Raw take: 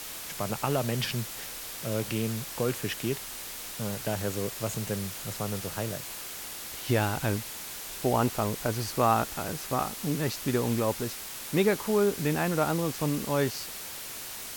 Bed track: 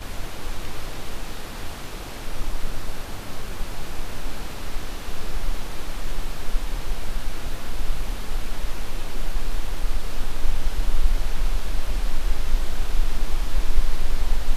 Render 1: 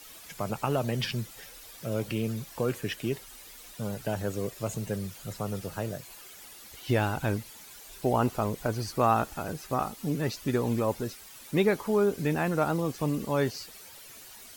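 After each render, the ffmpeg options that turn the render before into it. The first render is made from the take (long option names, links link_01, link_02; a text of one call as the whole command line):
ffmpeg -i in.wav -af "afftdn=noise_reduction=12:noise_floor=-40" out.wav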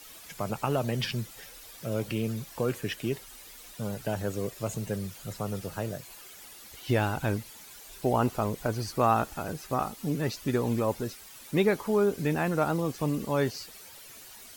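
ffmpeg -i in.wav -af anull out.wav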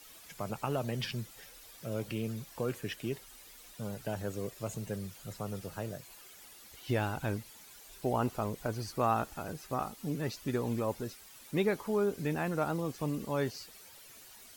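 ffmpeg -i in.wav -af "volume=-5.5dB" out.wav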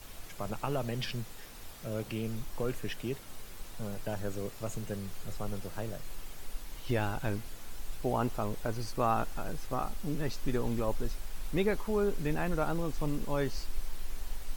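ffmpeg -i in.wav -i bed.wav -filter_complex "[1:a]volume=-17dB[link_01];[0:a][link_01]amix=inputs=2:normalize=0" out.wav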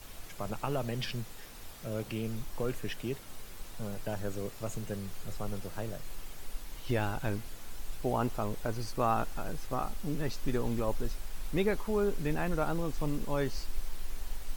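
ffmpeg -i in.wav -af "acrusher=bits=9:mode=log:mix=0:aa=0.000001" out.wav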